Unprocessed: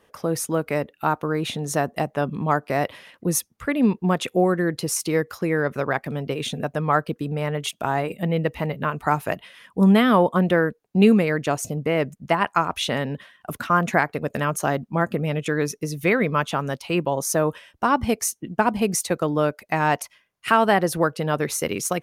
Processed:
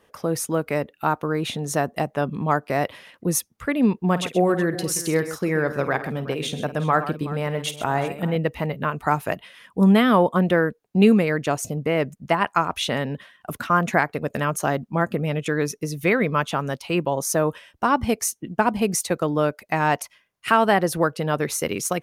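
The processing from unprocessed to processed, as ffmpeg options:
ffmpeg -i in.wav -filter_complex "[0:a]asettb=1/sr,asplit=3[link_01][link_02][link_03];[link_01]atrim=end=4.024[link_04];[link_02]atrim=start=4.02:end=8.36,asetpts=PTS-STARTPTS,afade=type=in:duration=0.004:curve=qsin,afade=type=out:start_time=4.336:duration=0.004:curve=qsin,aecho=1:1:51|129|372:0.2|0.237|0.15,atrim=end_sample=191394[link_05];[link_03]atrim=start=8.356[link_06];[link_04][link_05]acrossfade=duration=0.004:curve1=hsin:curve2=qsin[link_07];[link_07][link_06]acrossfade=duration=0.004:curve1=qsin:curve2=hsin" out.wav

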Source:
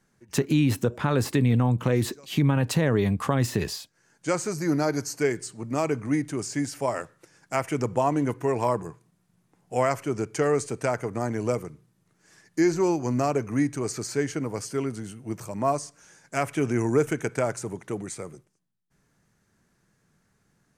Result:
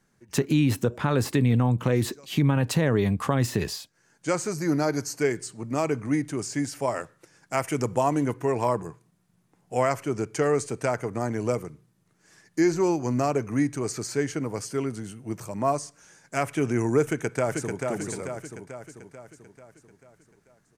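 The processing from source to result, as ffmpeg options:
ffmpeg -i in.wav -filter_complex "[0:a]asettb=1/sr,asplit=3[link_01][link_02][link_03];[link_01]atrim=end=7.574[link_04];[link_02]atrim=start=7.57:end=8.26,asetpts=PTS-STARTPTS,afade=type=in:duration=0.004:curve=qsin,afade=type=out:start_time=0.686:duration=0.004:curve=qsin,highshelf=frequency=6000:gain=7.5[link_05];[link_03]atrim=start=8.256[link_06];[link_04][link_05]acrossfade=duration=0.004:curve1=hsin:curve2=qsin[link_07];[link_07][link_06]acrossfade=duration=0.004:curve1=qsin:curve2=hsin,asplit=2[link_08][link_09];[link_09]afade=type=in:start_time=17.04:duration=0.01,afade=type=out:start_time=17.84:duration=0.01,aecho=0:1:440|880|1320|1760|2200|2640|3080:0.630957|0.347027|0.190865|0.104976|0.0577365|0.0317551|0.0174653[link_10];[link_08][link_10]amix=inputs=2:normalize=0" out.wav

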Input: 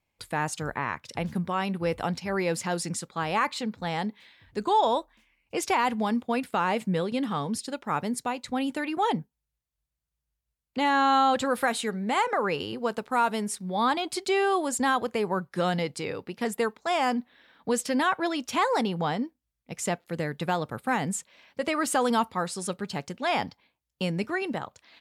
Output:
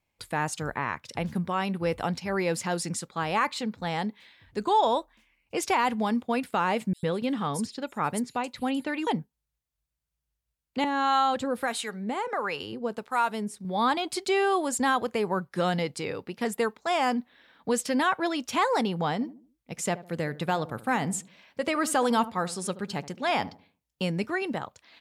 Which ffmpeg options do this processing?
ffmpeg -i in.wav -filter_complex "[0:a]asettb=1/sr,asplit=3[link_01][link_02][link_03];[link_01]atrim=end=6.934[link_04];[link_02]atrim=start=6.93:end=9.07,asetpts=PTS-STARTPTS,afade=type=in:duration=0.004:curve=qsin,afade=type=out:start_time=2.136:duration=0.004:curve=qsin,acrossover=split=5700[link_05][link_06];[link_05]adelay=100[link_07];[link_07][link_06]amix=inputs=2:normalize=0,atrim=end_sample=94374[link_08];[link_03]atrim=start=9.066[link_09];[link_04][link_08]acrossfade=duration=0.004:curve1=hsin:curve2=qsin[link_10];[link_10][link_09]acrossfade=duration=0.004:curve1=qsin:curve2=hsin,asettb=1/sr,asplit=3[link_11][link_12][link_13];[link_11]atrim=end=10.844[link_14];[link_12]atrim=start=10.84:end=13.65,asetpts=PTS-STARTPTS,afade=type=in:duration=0.004:curve=qsin,afade=type=out:start_time=2.806:duration=0.004:curve=qsin,acrossover=split=620[link_15][link_16];[link_15]aeval=exprs='val(0)*(1-0.7/2+0.7/2*cos(2*PI*1.5*n/s))':channel_layout=same[link_17];[link_16]aeval=exprs='val(0)*(1-0.7/2-0.7/2*cos(2*PI*1.5*n/s))':channel_layout=same[link_18];[link_17][link_18]amix=inputs=2:normalize=0[link_19];[link_13]atrim=start=13.646[link_20];[link_14][link_19]acrossfade=duration=0.004:curve1=hsin:curve2=qsin[link_21];[link_21][link_20]acrossfade=duration=0.004:curve1=qsin:curve2=hsin,asettb=1/sr,asplit=3[link_22][link_23][link_24];[link_22]atrim=end=19.134[link_25];[link_23]atrim=start=19.13:end=24.04,asetpts=PTS-STARTPTS,afade=type=in:duration=0.004:curve=qsin,afade=type=out:start_time=4.906:duration=0.004:curve=qsin,asplit=2[link_26][link_27];[link_27]adelay=75,lowpass=frequency=860:poles=1,volume=-14.5dB,asplit=2[link_28][link_29];[link_29]adelay=75,lowpass=frequency=860:poles=1,volume=0.38,asplit=2[link_30][link_31];[link_31]adelay=75,lowpass=frequency=860:poles=1,volume=0.38,asplit=2[link_32][link_33];[link_33]adelay=75,lowpass=frequency=860:poles=1,volume=0.38[link_34];[link_26][link_28][link_30][link_32][link_34]amix=inputs=5:normalize=0,atrim=end_sample=216531[link_35];[link_24]atrim=start=24.036[link_36];[link_25][link_35]acrossfade=duration=0.004:curve1=hsin:curve2=qsin[link_37];[link_37][link_36]acrossfade=duration=0.004:curve1=qsin:curve2=hsin" out.wav

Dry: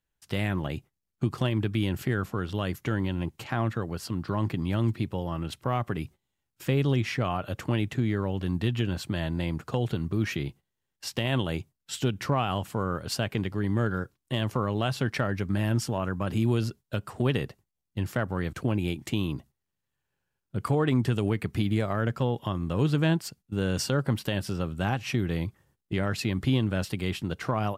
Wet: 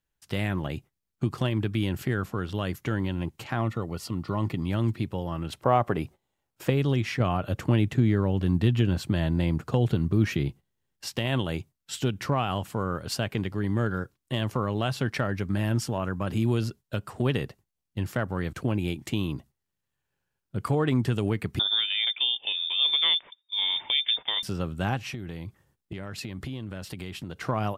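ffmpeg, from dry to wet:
ffmpeg -i in.wav -filter_complex "[0:a]asettb=1/sr,asplit=3[link_01][link_02][link_03];[link_01]atrim=end=3.614[link_04];[link_02]atrim=start=3.61:end=4.71,asetpts=PTS-STARTPTS,afade=type=in:duration=0.004:curve=qsin,afade=type=out:start_time=1.096:duration=0.004:curve=qsin,asuperstop=centerf=1600:order=12:qfactor=6.1[link_05];[link_03]atrim=start=4.706[link_06];[link_04][link_05]acrossfade=duration=0.004:curve1=hsin:curve2=qsin[link_07];[link_07][link_06]acrossfade=duration=0.004:curve1=qsin:curve2=hsin,asettb=1/sr,asplit=3[link_08][link_09][link_10];[link_08]atrim=end=5.534[link_11];[link_09]atrim=start=5.53:end=6.7,asetpts=PTS-STARTPTS,afade=type=in:duration=0.004:curve=qsin,afade=type=out:start_time=1.166:duration=0.004:curve=qsin,equalizer=frequency=640:width_type=o:width=2:gain=9.5[link_12];[link_10]atrim=start=6.696[link_13];[link_11][link_12]acrossfade=duration=0.004:curve1=hsin:curve2=qsin[link_14];[link_14][link_13]acrossfade=duration=0.004:curve1=qsin:curve2=hsin,asettb=1/sr,asplit=3[link_15][link_16][link_17];[link_15]atrim=end=7.204[link_18];[link_16]atrim=start=7.2:end=11.06,asetpts=PTS-STARTPTS,afade=type=in:duration=0.004:curve=qsin,afade=type=out:start_time=3.856:duration=0.004:curve=qsin,lowshelf=frequency=480:gain=5.5[link_19];[link_17]atrim=start=11.056[link_20];[link_18][link_19]acrossfade=duration=0.004:curve1=hsin:curve2=qsin[link_21];[link_21][link_20]acrossfade=duration=0.004:curve1=qsin:curve2=hsin,asettb=1/sr,asplit=3[link_22][link_23][link_24];[link_22]atrim=end=21.594[link_25];[link_23]atrim=start=21.59:end=24.43,asetpts=PTS-STARTPTS,afade=type=in:duration=0.004:curve=qsin,afade=type=out:start_time=2.836:duration=0.004:curve=qsin,lowpass=frequency=3100:width_type=q:width=0.5098,lowpass=frequency=3100:width_type=q:width=0.6013,lowpass=frequency=3100:width_type=q:width=0.9,lowpass=frequency=3100:width_type=q:width=2.563,afreqshift=-3700[link_26];[link_24]atrim=start=24.426[link_27];[link_25][link_26]acrossfade=duration=0.004:curve1=hsin:curve2=qsin[link_28];[link_28][link_27]acrossfade=duration=0.004:curve1=qsin:curve2=hsin,asplit=3[link_29][link_30][link_31];[link_29]afade=type=out:start_time=25.04:duration=0.02[link_32];[link_30]acompressor=threshold=-32dB:ratio=6:attack=3.2:release=140:knee=1:detection=peak,afade=type=in:start_time=25.04:duration=0.02,afade=type=out:start_time=27.35:duration=0.02[link_33];[link_31]afade=type=in:start_time=27.35:duration=0.02[link_34];[link_32][link_33][link_34]amix=inputs=3:normalize=0" out.wav

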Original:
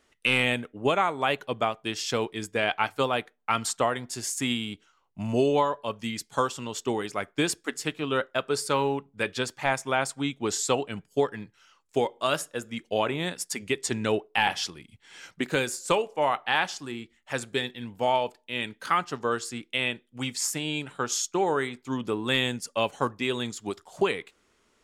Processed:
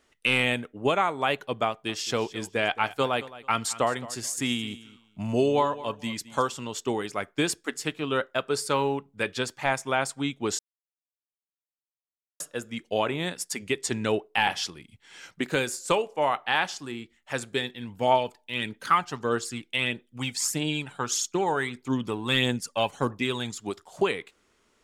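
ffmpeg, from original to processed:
ffmpeg -i in.wav -filter_complex "[0:a]asettb=1/sr,asplit=3[link_01][link_02][link_03];[link_01]atrim=end=1.674[link_04];[link_02]atrim=start=1.67:end=6.55,asetpts=PTS-STARTPTS,afade=type=in:duration=0.004:curve=qsin,afade=type=out:start_time=4.876:duration=0.004:curve=qsin,aecho=1:1:217|434:0.141|0.0297,atrim=end_sample=215208[link_05];[link_03]atrim=start=6.546[link_06];[link_04][link_05]acrossfade=duration=0.004:curve1=hsin:curve2=qsin[link_07];[link_07][link_06]acrossfade=duration=0.004:curve1=qsin:curve2=hsin,asplit=3[link_08][link_09][link_10];[link_08]afade=type=out:start_time=17.88:duration=0.02[link_11];[link_09]aphaser=in_gain=1:out_gain=1:delay=1.4:decay=0.44:speed=1.6:type=triangular,afade=type=in:start_time=17.88:duration=0.02,afade=type=out:start_time=23.59:duration=0.02[link_12];[link_10]afade=type=in:start_time=23.59:duration=0.02[link_13];[link_11][link_12][link_13]amix=inputs=3:normalize=0,asplit=3[link_14][link_15][link_16];[link_14]atrim=end=10.59,asetpts=PTS-STARTPTS,afade=type=out:start_time=10.586:duration=0.004:curve=hsin[link_17];[link_15]atrim=start=10.59:end=12.4,asetpts=PTS-STARTPTS,volume=0[link_18];[link_16]atrim=start=12.4,asetpts=PTS-STARTPTS,afade=type=in:duration=0.004:curve=hsin[link_19];[link_17][link_18][link_19]concat=n=3:v=0:a=1" out.wav

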